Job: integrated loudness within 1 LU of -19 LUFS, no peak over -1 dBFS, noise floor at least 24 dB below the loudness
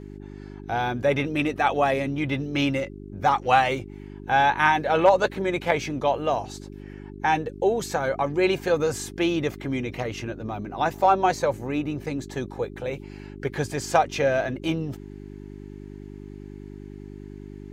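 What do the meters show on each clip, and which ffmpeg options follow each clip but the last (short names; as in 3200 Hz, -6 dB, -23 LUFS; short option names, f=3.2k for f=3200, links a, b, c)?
hum 50 Hz; harmonics up to 400 Hz; hum level -37 dBFS; loudness -24.5 LUFS; peak -5.0 dBFS; loudness target -19.0 LUFS
-> -af "bandreject=f=50:t=h:w=4,bandreject=f=100:t=h:w=4,bandreject=f=150:t=h:w=4,bandreject=f=200:t=h:w=4,bandreject=f=250:t=h:w=4,bandreject=f=300:t=h:w=4,bandreject=f=350:t=h:w=4,bandreject=f=400:t=h:w=4"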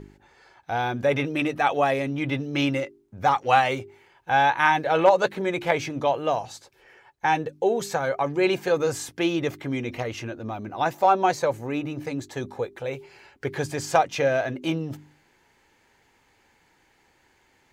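hum none; loudness -24.5 LUFS; peak -4.5 dBFS; loudness target -19.0 LUFS
-> -af "volume=5.5dB,alimiter=limit=-1dB:level=0:latency=1"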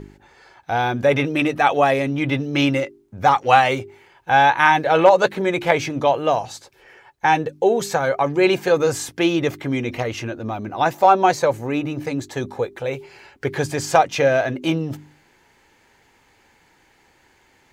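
loudness -19.5 LUFS; peak -1.0 dBFS; noise floor -58 dBFS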